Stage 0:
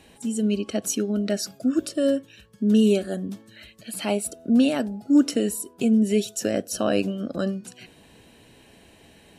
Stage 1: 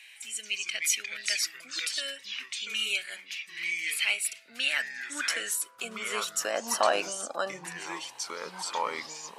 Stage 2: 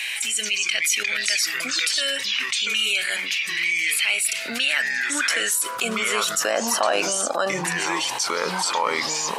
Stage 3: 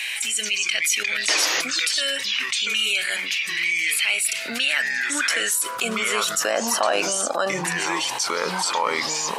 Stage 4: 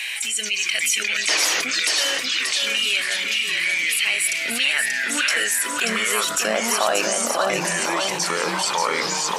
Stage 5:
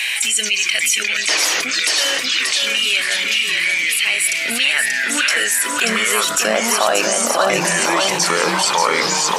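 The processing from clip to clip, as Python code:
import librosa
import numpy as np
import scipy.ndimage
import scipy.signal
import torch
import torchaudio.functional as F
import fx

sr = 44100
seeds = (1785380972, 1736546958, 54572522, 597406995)

y1 = fx.echo_pitch(x, sr, ms=174, semitones=-4, count=3, db_per_echo=-6.0)
y1 = fx.filter_sweep_highpass(y1, sr, from_hz=2200.0, to_hz=900.0, start_s=4.45, end_s=6.69, q=4.0)
y2 = fx.env_flatten(y1, sr, amount_pct=70)
y2 = F.gain(torch.from_numpy(y2), 2.0).numpy()
y3 = fx.spec_paint(y2, sr, seeds[0], shape='noise', start_s=1.28, length_s=0.34, low_hz=280.0, high_hz=6900.0, level_db=-24.0)
y4 = fx.echo_feedback(y3, sr, ms=583, feedback_pct=37, wet_db=-4.5)
y5 = fx.rider(y4, sr, range_db=10, speed_s=0.5)
y5 = F.gain(torch.from_numpy(y5), 4.5).numpy()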